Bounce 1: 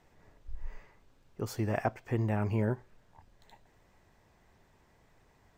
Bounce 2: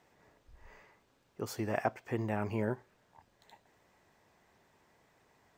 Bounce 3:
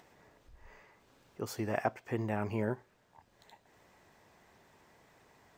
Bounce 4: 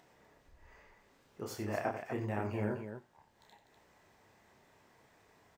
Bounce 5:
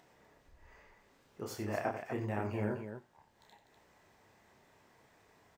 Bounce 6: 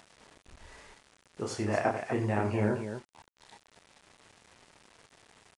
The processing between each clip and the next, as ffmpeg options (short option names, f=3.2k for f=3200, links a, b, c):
-af "highpass=f=240:p=1"
-af "acompressor=mode=upward:threshold=-56dB:ratio=2.5"
-af "flanger=delay=7.1:depth=9.1:regen=-71:speed=0.42:shape=triangular,aecho=1:1:29.15|90.38|247.8:0.631|0.316|0.398"
-af anull
-af "acrusher=bits=9:mix=0:aa=0.000001,aresample=22050,aresample=44100,volume=7dB"